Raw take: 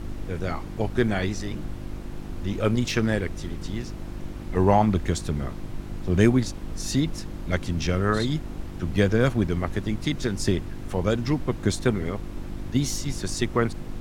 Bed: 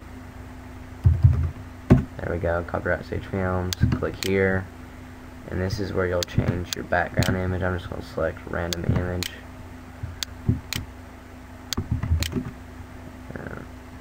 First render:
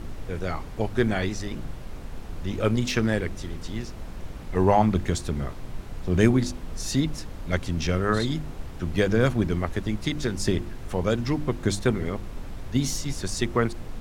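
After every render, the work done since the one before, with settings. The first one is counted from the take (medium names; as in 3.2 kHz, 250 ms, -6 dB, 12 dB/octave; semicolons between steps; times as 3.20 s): de-hum 50 Hz, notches 7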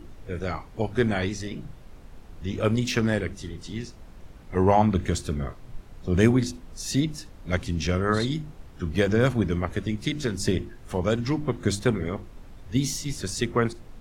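noise print and reduce 9 dB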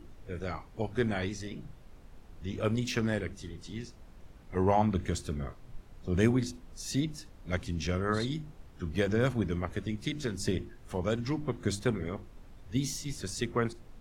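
trim -6.5 dB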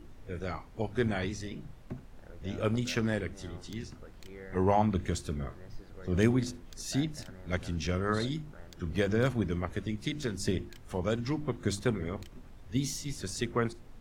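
add bed -26 dB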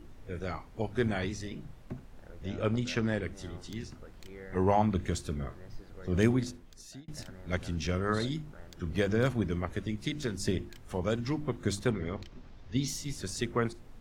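2.48–3.23 s: distance through air 51 m; 6.32–7.08 s: fade out; 11.91–12.88 s: resonant high shelf 7.1 kHz -11 dB, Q 1.5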